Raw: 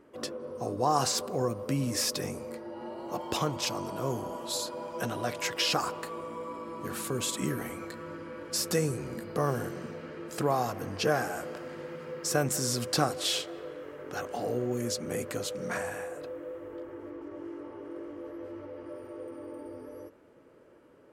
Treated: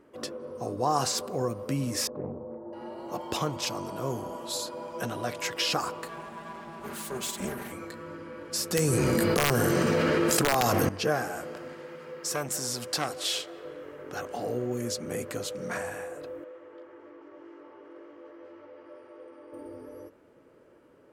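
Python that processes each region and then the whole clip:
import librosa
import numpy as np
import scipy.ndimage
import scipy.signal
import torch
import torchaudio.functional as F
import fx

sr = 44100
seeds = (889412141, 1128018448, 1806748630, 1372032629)

y = fx.chain(x, sr, fx.lowpass(hz=1000.0, slope=24),
    fx.doppler_dist(depth_ms=0.3), at=(2.07, 2.73))
y = fx.chain(y, sr, fx.lower_of_two(delay_ms=5.0),
    fx.highpass(hz=65.0, slope=12), at=(6.08, 7.72))
y = fx.chain(y, sr, fx.high_shelf(hz=3000.0, db=6.0),
    fx.overflow_wrap(gain_db=17.0),
    fx.env_flatten(amount_pct=100), at=(8.76, 10.89))
y = fx.chain(y, sr, fx.low_shelf(hz=270.0, db=-8.0),
    fx.transformer_sat(knee_hz=1600.0), at=(11.73, 13.65))
y = fx.chain(y, sr, fx.highpass(hz=770.0, slope=6),
    fx.air_absorb(metres=99.0), at=(16.44, 19.53))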